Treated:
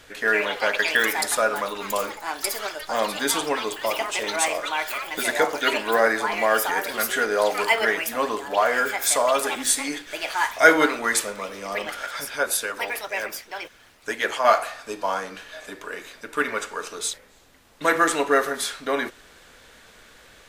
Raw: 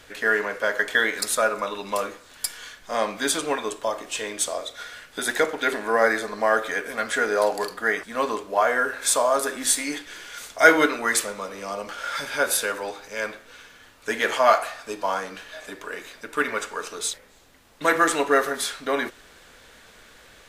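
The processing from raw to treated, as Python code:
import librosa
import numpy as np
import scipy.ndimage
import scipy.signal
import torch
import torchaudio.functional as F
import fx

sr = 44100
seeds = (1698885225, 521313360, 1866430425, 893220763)

y = fx.echo_pitch(x, sr, ms=174, semitones=6, count=3, db_per_echo=-6.0)
y = fx.hpss(y, sr, part='harmonic', gain_db=-9, at=(12.06, 14.45))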